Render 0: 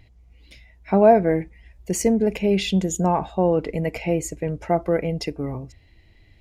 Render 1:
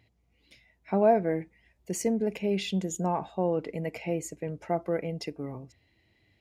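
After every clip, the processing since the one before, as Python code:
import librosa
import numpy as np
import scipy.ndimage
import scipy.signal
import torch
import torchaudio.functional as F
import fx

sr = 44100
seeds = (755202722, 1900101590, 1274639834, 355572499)

y = scipy.signal.sosfilt(scipy.signal.butter(2, 120.0, 'highpass', fs=sr, output='sos'), x)
y = F.gain(torch.from_numpy(y), -8.0).numpy()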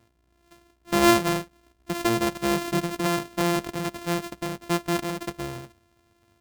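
y = np.r_[np.sort(x[:len(x) // 128 * 128].reshape(-1, 128), axis=1).ravel(), x[len(x) // 128 * 128:]]
y = F.gain(torch.from_numpy(y), 3.5).numpy()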